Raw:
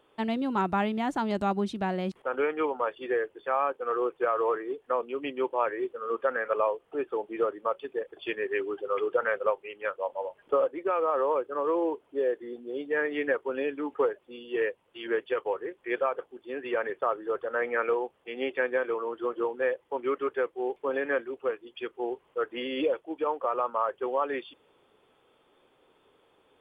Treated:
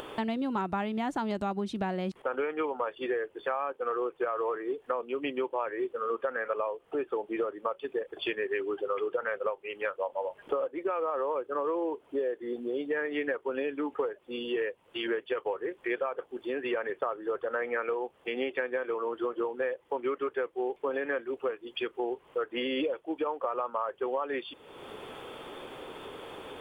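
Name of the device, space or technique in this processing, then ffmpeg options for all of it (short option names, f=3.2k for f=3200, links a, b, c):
upward and downward compression: -af "acompressor=mode=upward:threshold=-32dB:ratio=2.5,acompressor=threshold=-32dB:ratio=6,volume=4dB"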